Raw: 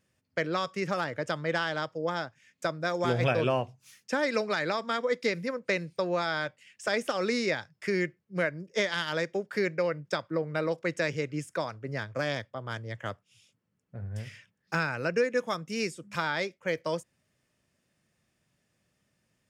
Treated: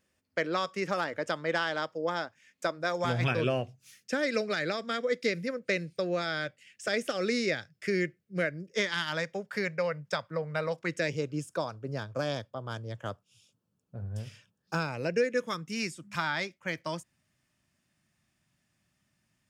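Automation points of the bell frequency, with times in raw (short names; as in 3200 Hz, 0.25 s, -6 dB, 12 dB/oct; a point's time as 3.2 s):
bell -14 dB 0.47 oct
2.66 s 130 Hz
3.5 s 950 Hz
8.65 s 950 Hz
9.3 s 330 Hz
10.72 s 330 Hz
11.21 s 2000 Hz
14.76 s 2000 Hz
15.82 s 470 Hz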